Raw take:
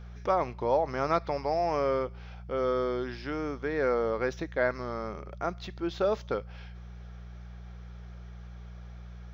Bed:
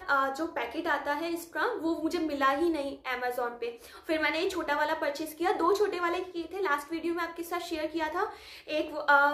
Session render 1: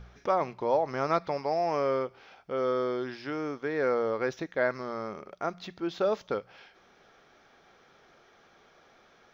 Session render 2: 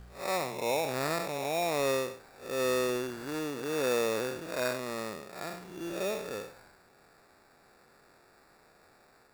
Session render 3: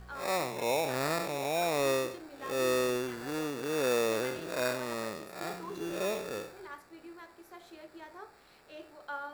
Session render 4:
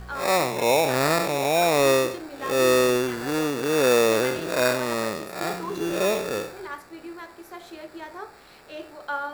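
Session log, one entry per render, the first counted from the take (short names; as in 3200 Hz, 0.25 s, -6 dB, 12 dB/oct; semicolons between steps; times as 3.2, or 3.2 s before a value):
de-hum 60 Hz, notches 3
time blur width 0.172 s; sample-rate reducer 3100 Hz, jitter 0%
add bed -17.5 dB
gain +10 dB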